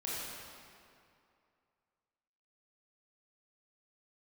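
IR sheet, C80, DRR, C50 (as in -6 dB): -1.5 dB, -8.0 dB, -4.0 dB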